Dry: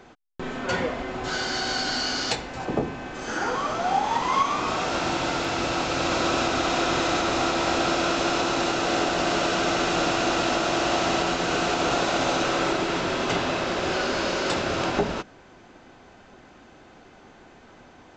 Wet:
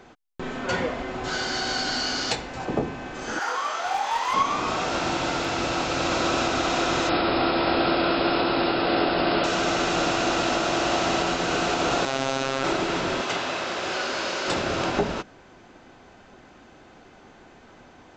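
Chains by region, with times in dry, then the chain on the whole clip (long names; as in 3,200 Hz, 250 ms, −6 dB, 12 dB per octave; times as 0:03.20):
0:03.39–0:04.34: high-pass filter 760 Hz + hard clipping −21.5 dBFS + double-tracking delay 24 ms −4 dB
0:07.09–0:09.44: linear-phase brick-wall low-pass 5,300 Hz + parametric band 350 Hz +3 dB 1.8 octaves
0:12.05–0:12.64: phases set to zero 134 Hz + highs frequency-modulated by the lows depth 0.19 ms
0:13.21–0:14.48: high-pass filter 55 Hz + low-shelf EQ 390 Hz −10.5 dB
whole clip: no processing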